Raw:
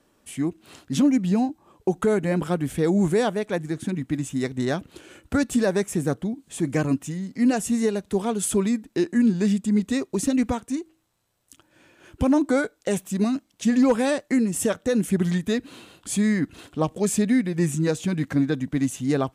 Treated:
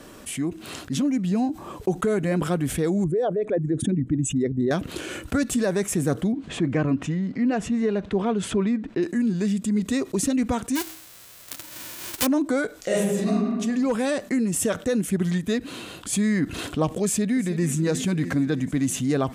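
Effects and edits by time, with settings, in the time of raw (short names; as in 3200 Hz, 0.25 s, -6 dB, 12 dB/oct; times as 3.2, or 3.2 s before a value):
3.04–4.71 formant sharpening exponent 2
6.32–9.03 LPF 2700 Hz
10.75–12.25 spectral whitening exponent 0.1
12.79–13.3 reverb throw, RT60 1 s, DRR -11 dB
14.96–16.13 upward expander, over -34 dBFS
17.04–17.68 echo throw 0.32 s, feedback 60%, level -17 dB
whole clip: vocal rider 0.5 s; notch 860 Hz, Q 12; fast leveller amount 50%; gain -4.5 dB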